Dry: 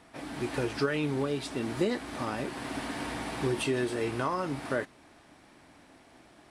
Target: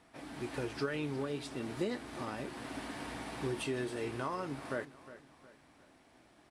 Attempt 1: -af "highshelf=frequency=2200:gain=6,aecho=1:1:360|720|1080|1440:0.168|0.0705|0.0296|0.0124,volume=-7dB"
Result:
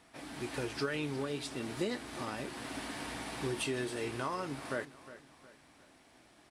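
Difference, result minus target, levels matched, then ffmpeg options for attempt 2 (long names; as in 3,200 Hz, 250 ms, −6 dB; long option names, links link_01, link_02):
4,000 Hz band +3.5 dB
-af "aecho=1:1:360|720|1080|1440:0.168|0.0705|0.0296|0.0124,volume=-7dB"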